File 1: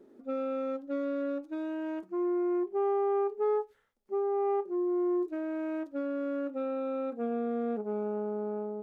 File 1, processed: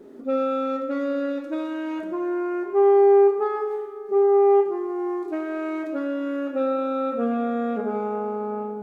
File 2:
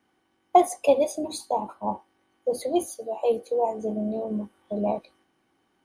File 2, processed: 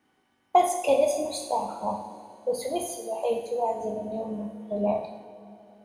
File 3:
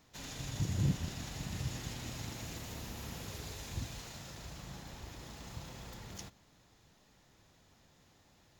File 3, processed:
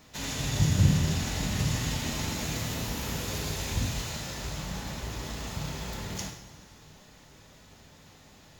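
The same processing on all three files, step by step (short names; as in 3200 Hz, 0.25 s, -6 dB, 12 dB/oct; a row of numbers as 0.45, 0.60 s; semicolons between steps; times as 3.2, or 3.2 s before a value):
two-slope reverb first 0.71 s, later 3.3 s, from -16 dB, DRR 1 dB; dynamic EQ 310 Hz, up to -6 dB, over -38 dBFS, Q 1.1; normalise peaks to -9 dBFS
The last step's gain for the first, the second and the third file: +10.0, -0.5, +9.5 dB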